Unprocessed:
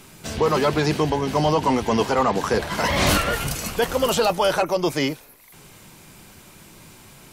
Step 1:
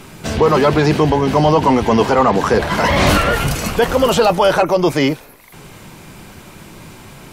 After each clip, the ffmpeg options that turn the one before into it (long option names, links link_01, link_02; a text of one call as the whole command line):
ffmpeg -i in.wav -filter_complex "[0:a]highshelf=frequency=3700:gain=-8.5,asplit=2[link_01][link_02];[link_02]alimiter=limit=-20dB:level=0:latency=1:release=32,volume=0dB[link_03];[link_01][link_03]amix=inputs=2:normalize=0,volume=4.5dB" out.wav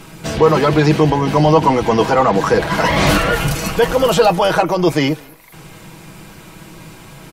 ffmpeg -i in.wav -filter_complex "[0:a]aecho=1:1:6.2:0.47,asplit=2[link_01][link_02];[link_02]adelay=204.1,volume=-27dB,highshelf=frequency=4000:gain=-4.59[link_03];[link_01][link_03]amix=inputs=2:normalize=0,volume=-1dB" out.wav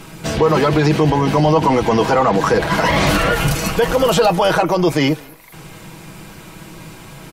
ffmpeg -i in.wav -af "alimiter=level_in=5.5dB:limit=-1dB:release=50:level=0:latency=1,volume=-4.5dB" out.wav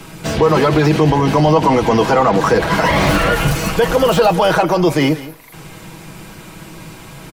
ffmpeg -i in.wav -filter_complex "[0:a]acrossover=split=140|910|2500[link_01][link_02][link_03][link_04];[link_04]asoftclip=type=hard:threshold=-26.5dB[link_05];[link_01][link_02][link_03][link_05]amix=inputs=4:normalize=0,aecho=1:1:173:0.15,volume=1.5dB" out.wav